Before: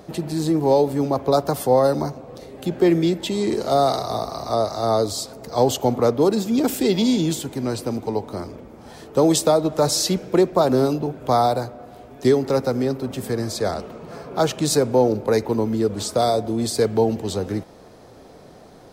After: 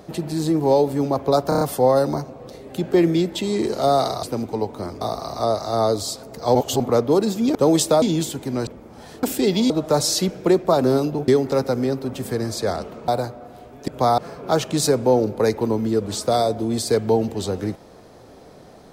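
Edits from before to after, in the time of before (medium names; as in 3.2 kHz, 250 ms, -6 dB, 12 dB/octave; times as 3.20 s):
1.49 s: stutter 0.03 s, 5 plays
5.65–5.90 s: reverse
6.65–7.12 s: swap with 9.11–9.58 s
7.77–8.55 s: move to 4.11 s
11.16–11.46 s: swap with 12.26–14.06 s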